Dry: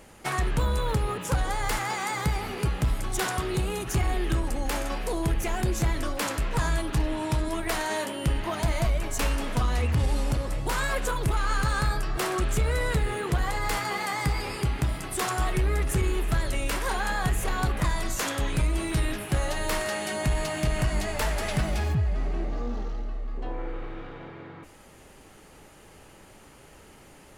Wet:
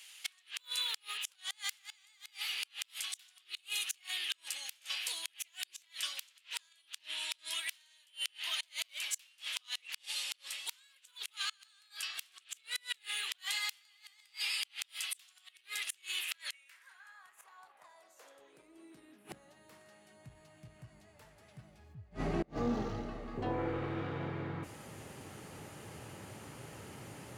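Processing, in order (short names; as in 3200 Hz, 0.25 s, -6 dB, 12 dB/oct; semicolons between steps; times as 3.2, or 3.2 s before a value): high-pass sweep 3100 Hz -> 110 Hz, 16.16–20.08; flipped gate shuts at -24 dBFS, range -32 dB; gain +1 dB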